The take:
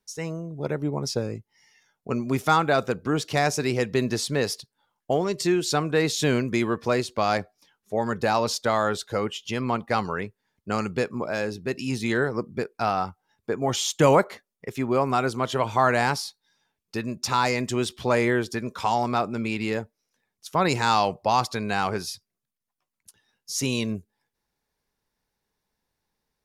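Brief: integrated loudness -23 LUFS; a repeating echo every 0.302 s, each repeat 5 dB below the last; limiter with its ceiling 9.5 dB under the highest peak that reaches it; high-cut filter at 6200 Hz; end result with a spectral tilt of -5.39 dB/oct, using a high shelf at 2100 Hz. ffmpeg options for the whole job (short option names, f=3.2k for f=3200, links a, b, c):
-af "lowpass=6.2k,highshelf=f=2.1k:g=-8,alimiter=limit=-17dB:level=0:latency=1,aecho=1:1:302|604|906|1208|1510|1812|2114:0.562|0.315|0.176|0.0988|0.0553|0.031|0.0173,volume=5.5dB"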